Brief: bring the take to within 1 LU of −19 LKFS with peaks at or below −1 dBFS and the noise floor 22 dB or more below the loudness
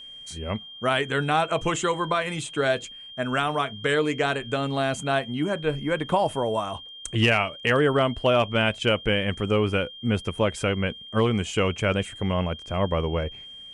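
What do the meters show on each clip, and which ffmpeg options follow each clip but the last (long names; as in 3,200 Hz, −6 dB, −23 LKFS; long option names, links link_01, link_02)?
interfering tone 3,200 Hz; level of the tone −40 dBFS; integrated loudness −25.0 LKFS; sample peak −10.0 dBFS; target loudness −19.0 LKFS
→ -af "bandreject=frequency=3200:width=30"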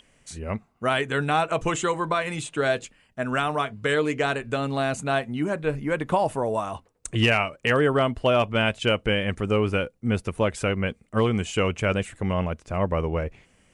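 interfering tone none found; integrated loudness −25.0 LKFS; sample peak −10.0 dBFS; target loudness −19.0 LKFS
→ -af "volume=6dB"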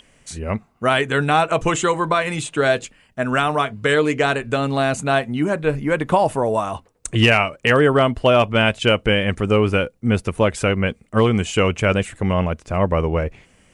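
integrated loudness −19.0 LKFS; sample peak −4.0 dBFS; background noise floor −57 dBFS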